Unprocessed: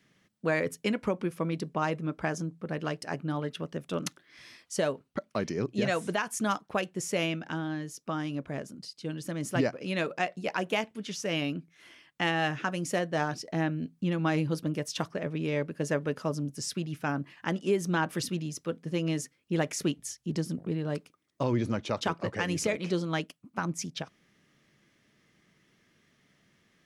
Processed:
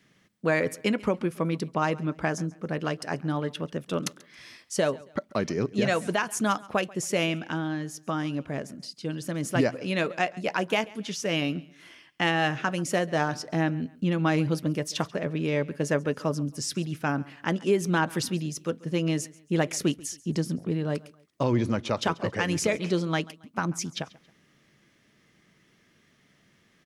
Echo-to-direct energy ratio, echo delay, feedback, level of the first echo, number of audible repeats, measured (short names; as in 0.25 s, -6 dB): -21.5 dB, 0.137 s, 35%, -22.0 dB, 2